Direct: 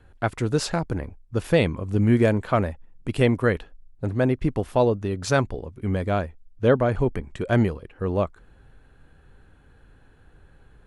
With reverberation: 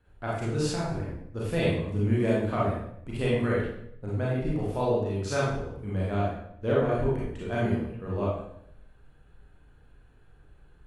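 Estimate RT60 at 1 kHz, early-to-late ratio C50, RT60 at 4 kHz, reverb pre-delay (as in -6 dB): 0.70 s, -0.5 dB, 0.60 s, 28 ms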